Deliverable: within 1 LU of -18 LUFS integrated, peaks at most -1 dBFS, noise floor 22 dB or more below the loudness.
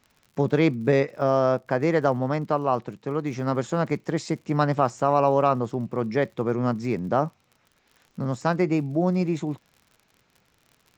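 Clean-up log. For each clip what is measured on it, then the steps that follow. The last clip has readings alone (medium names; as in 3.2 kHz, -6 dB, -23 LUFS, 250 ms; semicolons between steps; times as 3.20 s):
tick rate 58 per s; loudness -24.5 LUFS; peak level -6.5 dBFS; loudness target -18.0 LUFS
-> de-click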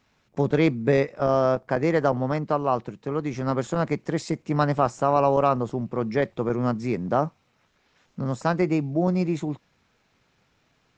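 tick rate 0.18 per s; loudness -24.5 LUFS; peak level -6.5 dBFS; loudness target -18.0 LUFS
-> trim +6.5 dB; peak limiter -1 dBFS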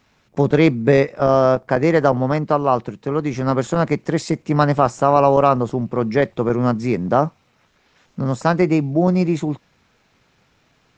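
loudness -18.0 LUFS; peak level -1.0 dBFS; noise floor -61 dBFS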